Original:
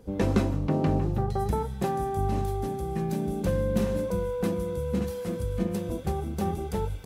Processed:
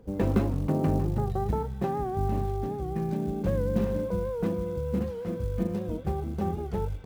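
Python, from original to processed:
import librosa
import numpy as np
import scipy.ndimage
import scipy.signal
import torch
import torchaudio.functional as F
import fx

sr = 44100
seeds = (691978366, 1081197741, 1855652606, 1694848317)

y = fx.spacing_loss(x, sr, db_at_10k=24)
y = fx.quant_float(y, sr, bits=4)
y = fx.record_warp(y, sr, rpm=78.0, depth_cents=100.0)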